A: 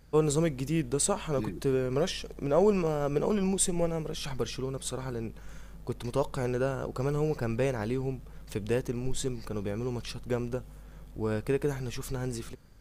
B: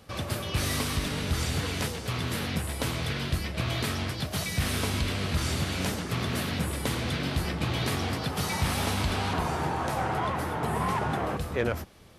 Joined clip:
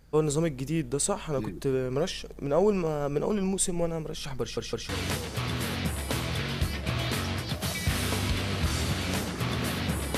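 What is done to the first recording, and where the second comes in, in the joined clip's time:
A
0:04.41: stutter in place 0.16 s, 3 plays
0:04.89: continue with B from 0:01.60

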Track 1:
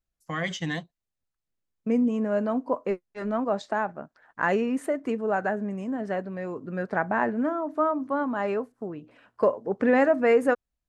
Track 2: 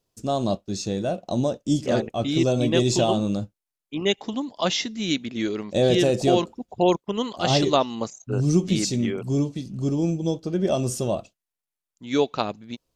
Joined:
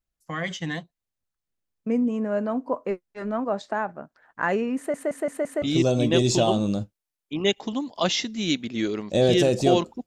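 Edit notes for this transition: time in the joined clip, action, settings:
track 1
0:04.77: stutter in place 0.17 s, 5 plays
0:05.62: continue with track 2 from 0:02.23

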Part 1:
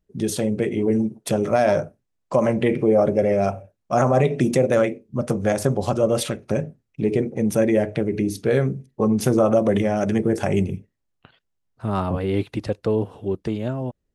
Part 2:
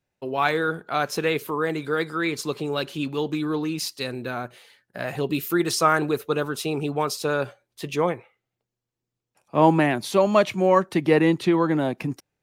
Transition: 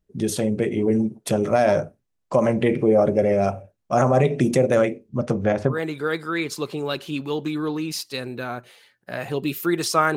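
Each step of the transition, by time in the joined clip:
part 1
0:05.09–0:05.80: low-pass filter 8,800 Hz → 1,700 Hz
0:05.73: continue with part 2 from 0:01.60, crossfade 0.14 s

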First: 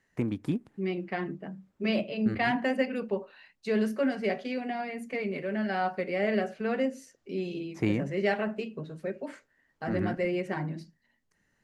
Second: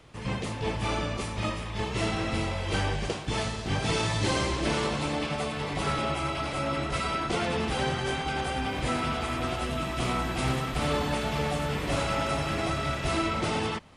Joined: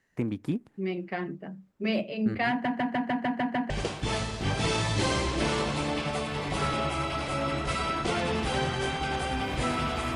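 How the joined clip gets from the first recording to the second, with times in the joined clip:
first
0:02.50: stutter in place 0.15 s, 8 plays
0:03.70: continue with second from 0:02.95

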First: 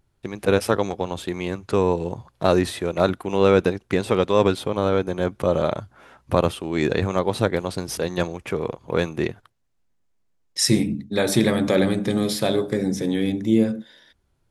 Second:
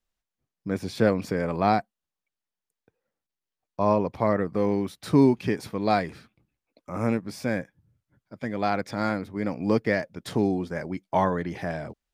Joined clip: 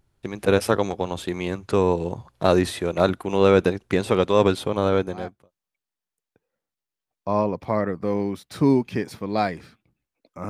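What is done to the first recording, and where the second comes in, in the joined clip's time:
first
0:05.26: continue with second from 0:01.78, crossfade 0.52 s quadratic

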